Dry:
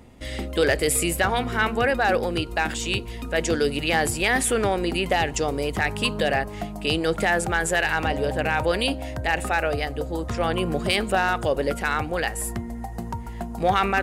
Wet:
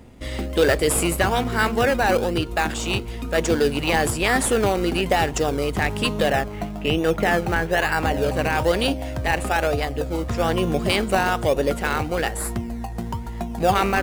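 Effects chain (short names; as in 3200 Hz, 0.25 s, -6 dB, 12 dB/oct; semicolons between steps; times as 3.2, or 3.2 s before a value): 6.3–8.17 steep low-pass 3200 Hz 36 dB/oct; in parallel at -6.5 dB: decimation with a swept rate 20×, swing 60% 1.1 Hz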